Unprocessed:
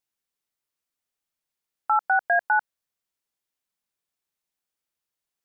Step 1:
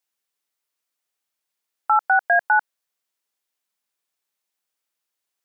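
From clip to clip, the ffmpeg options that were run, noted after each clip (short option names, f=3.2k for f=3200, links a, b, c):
-af "highpass=f=400:p=1,volume=4.5dB"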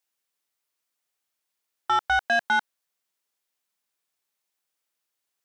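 -af "asoftclip=type=tanh:threshold=-17.5dB"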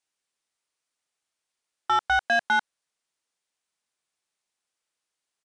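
-af "aresample=22050,aresample=44100"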